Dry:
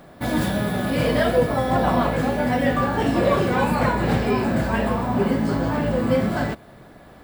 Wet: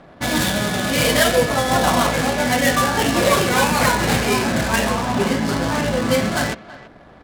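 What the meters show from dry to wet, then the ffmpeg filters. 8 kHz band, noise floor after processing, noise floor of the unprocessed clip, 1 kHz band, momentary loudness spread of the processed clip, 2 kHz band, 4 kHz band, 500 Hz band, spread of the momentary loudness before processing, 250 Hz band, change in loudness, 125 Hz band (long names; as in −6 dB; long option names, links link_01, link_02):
+17.5 dB, −45 dBFS, −46 dBFS, +4.0 dB, 5 LU, +7.5 dB, +12.0 dB, +1.5 dB, 4 LU, +0.5 dB, +3.5 dB, 0.0 dB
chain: -filter_complex "[0:a]adynamicsmooth=sensitivity=7:basefreq=1100,asplit=2[link_01][link_02];[link_02]adelay=330,highpass=300,lowpass=3400,asoftclip=type=hard:threshold=-16dB,volume=-17dB[link_03];[link_01][link_03]amix=inputs=2:normalize=0,crystalizer=i=8.5:c=0"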